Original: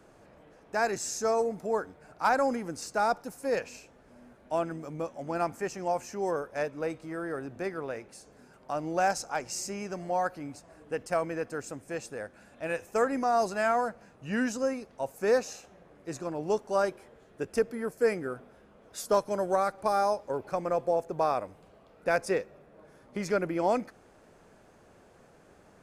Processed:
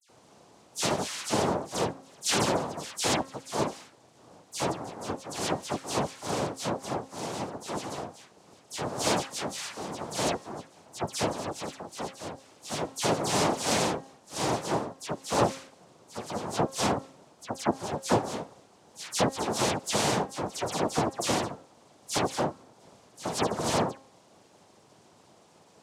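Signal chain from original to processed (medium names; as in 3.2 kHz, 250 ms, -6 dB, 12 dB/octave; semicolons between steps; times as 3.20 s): noise-vocoded speech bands 2; de-hum 267.9 Hz, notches 7; phase dispersion lows, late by 89 ms, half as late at 2.6 kHz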